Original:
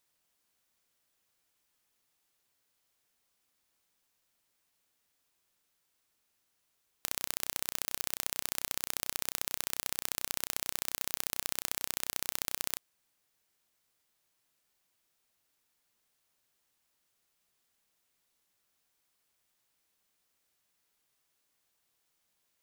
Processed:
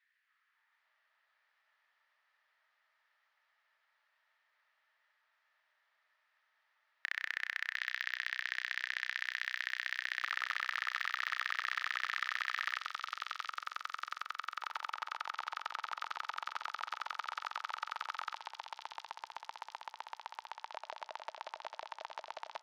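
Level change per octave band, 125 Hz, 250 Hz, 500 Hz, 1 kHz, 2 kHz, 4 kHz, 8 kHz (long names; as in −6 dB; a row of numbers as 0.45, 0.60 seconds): below −30 dB, below −20 dB, −3.0 dB, +10.0 dB, +10.5 dB, −1.5 dB, −18.5 dB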